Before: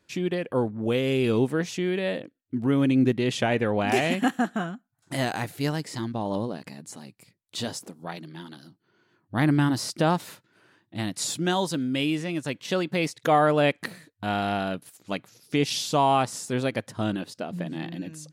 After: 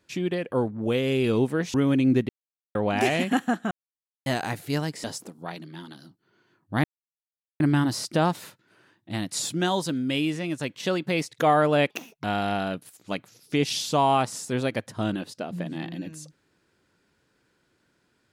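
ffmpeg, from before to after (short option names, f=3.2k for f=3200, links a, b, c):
-filter_complex "[0:a]asplit=10[a][b][c][d][e][f][g][h][i][j];[a]atrim=end=1.742[k];[b]atrim=start=2.648:end=3.2,asetpts=PTS-STARTPTS,afade=t=out:st=0.548:d=0.004:c=hsin[l];[c]atrim=start=3.2:end=3.66,asetpts=PTS-STARTPTS,volume=0[m];[d]atrim=start=3.66:end=4.62,asetpts=PTS-STARTPTS,afade=t=in:d=0.004:c=hsin,afade=t=out:st=0.956:d=0.004:c=hsin[n];[e]atrim=start=4.62:end=5.17,asetpts=PTS-STARTPTS,volume=0[o];[f]atrim=start=5.17:end=5.952,asetpts=PTS-STARTPTS,afade=t=in:d=0.004:c=hsin[p];[g]atrim=start=7.648:end=9.45,asetpts=PTS-STARTPTS,afade=t=out:st=1.798:d=0.004:c=hsin,apad=pad_dur=0.76[q];[h]atrim=start=9.45:end=13.754,asetpts=PTS-STARTPTS,afade=t=in:d=0.004:c=hsin[r];[i]atrim=start=13.75:end=14.24,asetpts=PTS-STARTPTS,asetrate=63945,aresample=44100[s];[j]atrim=start=14.236[t];[l][m][n][o][p]concat=n=5:v=0:a=1[u];[k][u]acrossfade=d=0.004:c1=hsin:c2=hsin[v];[q][r]concat=n=2:v=0:a=1[w];[v][w]acrossfade=d=0.004:c1=hsin:c2=hsin[x];[x][s]acrossfade=d=0.004:c1=hsin:c2=hsin[y];[y][t]acrossfade=d=0.004:c1=hsin:c2=hsin"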